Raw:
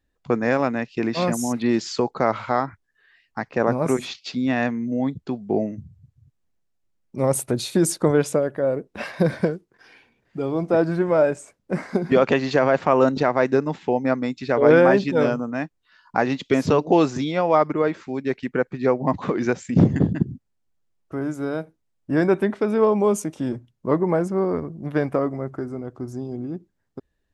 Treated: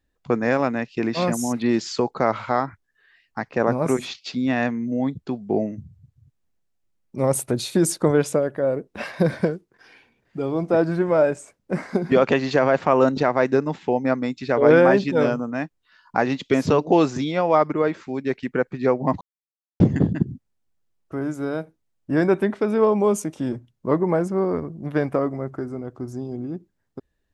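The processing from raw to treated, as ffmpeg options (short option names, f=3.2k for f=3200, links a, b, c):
-filter_complex "[0:a]asplit=3[a][b][c];[a]atrim=end=19.21,asetpts=PTS-STARTPTS,afade=t=out:st=19.206:d=0.004:c=hsin[d];[b]atrim=start=19.21:end=19.8,asetpts=PTS-STARTPTS,volume=0[e];[c]atrim=start=19.8,asetpts=PTS-STARTPTS,afade=t=in:d=0.004:c=hsin[f];[d][e][f]concat=n=3:v=0:a=1"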